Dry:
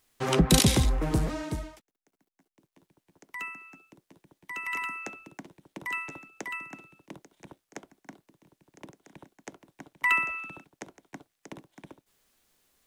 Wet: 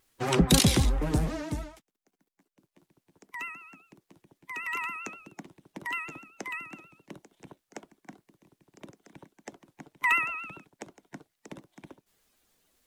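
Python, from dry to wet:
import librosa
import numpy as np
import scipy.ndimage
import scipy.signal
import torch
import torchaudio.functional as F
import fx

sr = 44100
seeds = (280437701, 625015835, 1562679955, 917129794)

y = fx.spec_quant(x, sr, step_db=15)
y = fx.vibrato(y, sr, rate_hz=7.6, depth_cents=73.0)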